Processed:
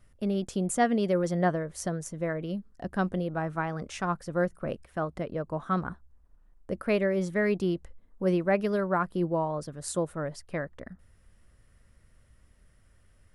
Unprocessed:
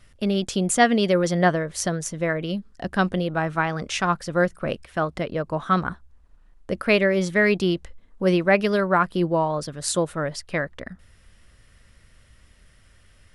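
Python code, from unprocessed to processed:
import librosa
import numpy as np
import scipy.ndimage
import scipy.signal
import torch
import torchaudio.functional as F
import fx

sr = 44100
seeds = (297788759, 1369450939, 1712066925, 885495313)

y = fx.peak_eq(x, sr, hz=3500.0, db=-9.5, octaves=2.2)
y = F.gain(torch.from_numpy(y), -5.5).numpy()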